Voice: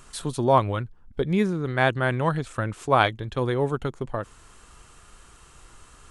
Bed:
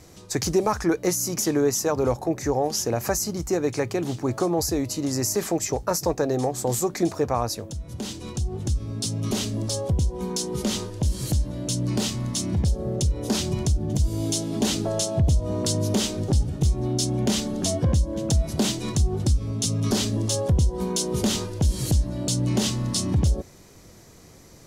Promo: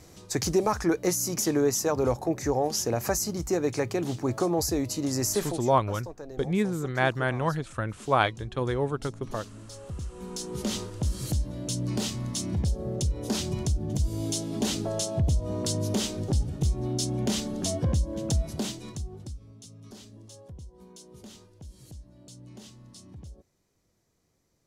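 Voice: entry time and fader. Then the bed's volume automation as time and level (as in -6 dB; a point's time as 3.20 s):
5.20 s, -3.5 dB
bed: 5.40 s -2.5 dB
5.71 s -18 dB
9.67 s -18 dB
10.66 s -4.5 dB
18.36 s -4.5 dB
19.68 s -24 dB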